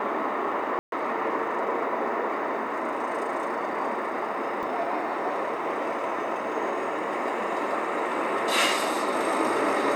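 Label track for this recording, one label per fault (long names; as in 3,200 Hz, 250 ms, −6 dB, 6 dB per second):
0.790000	0.920000	drop-out 132 ms
4.630000	4.630000	drop-out 2.6 ms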